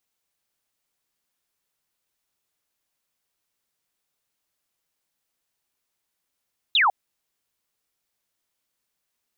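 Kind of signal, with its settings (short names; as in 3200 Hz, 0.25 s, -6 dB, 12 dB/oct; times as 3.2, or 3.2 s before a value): laser zap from 4000 Hz, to 720 Hz, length 0.15 s sine, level -15.5 dB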